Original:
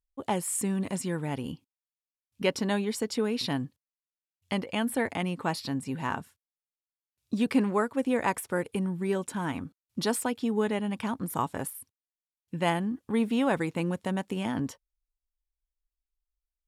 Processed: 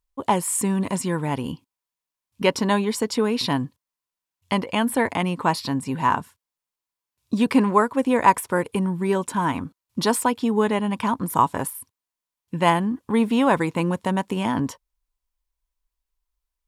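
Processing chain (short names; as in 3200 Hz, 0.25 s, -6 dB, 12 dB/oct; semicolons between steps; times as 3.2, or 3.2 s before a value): bell 1000 Hz +10 dB 0.27 oct; gain +6.5 dB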